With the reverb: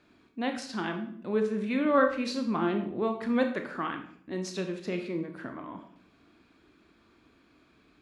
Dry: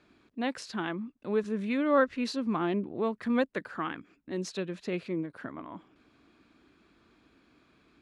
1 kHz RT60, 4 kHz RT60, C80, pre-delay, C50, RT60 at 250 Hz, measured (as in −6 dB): 0.55 s, 0.50 s, 12.0 dB, 21 ms, 8.5 dB, 0.75 s